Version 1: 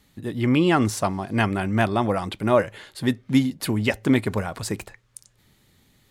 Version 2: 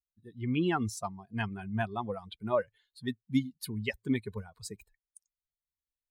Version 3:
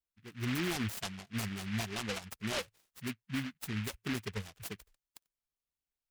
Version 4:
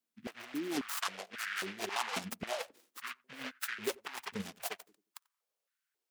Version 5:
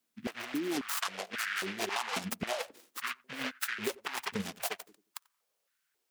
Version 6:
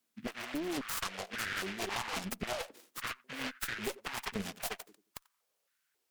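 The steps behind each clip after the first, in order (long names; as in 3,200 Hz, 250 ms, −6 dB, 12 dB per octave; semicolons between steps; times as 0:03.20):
spectral dynamics exaggerated over time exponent 2; level −7.5 dB
brickwall limiter −27.5 dBFS, peak gain reduction 11 dB; short delay modulated by noise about 2,000 Hz, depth 0.28 ms
compressor whose output falls as the input rises −38 dBFS, ratio −0.5; feedback echo with a low-pass in the loop 89 ms, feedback 30%, low-pass 860 Hz, level −21.5 dB; high-pass on a step sequencer 3.7 Hz 230–1,500 Hz; level +1 dB
downward compressor, threshold −38 dBFS, peak gain reduction 9 dB; level +7.5 dB
asymmetric clip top −39 dBFS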